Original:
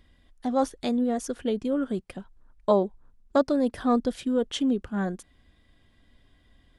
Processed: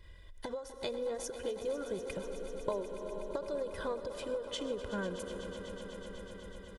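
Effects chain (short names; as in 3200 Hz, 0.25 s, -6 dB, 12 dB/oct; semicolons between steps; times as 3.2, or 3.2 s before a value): comb 2 ms, depth 87%; on a send at -16 dB: reverb RT60 1.8 s, pre-delay 48 ms; on the sum: compressor 6:1, threshold -37 dBFS, peak gain reduction 21.5 dB; swelling echo 0.124 s, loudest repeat 5, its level -15 dB; ending taper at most 120 dB/s; gain +2 dB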